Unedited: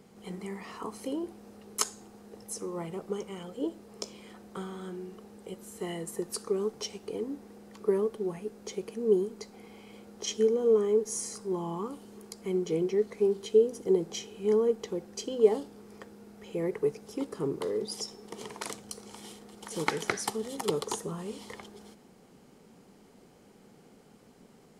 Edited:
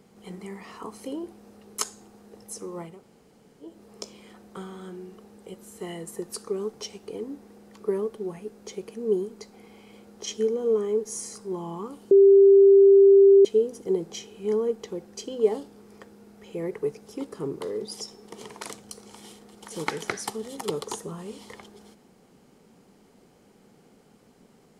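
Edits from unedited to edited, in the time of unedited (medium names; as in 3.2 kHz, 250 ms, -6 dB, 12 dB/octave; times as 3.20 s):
2.92–3.71 s: room tone, crossfade 0.24 s
12.11–13.45 s: bleep 394 Hz -10.5 dBFS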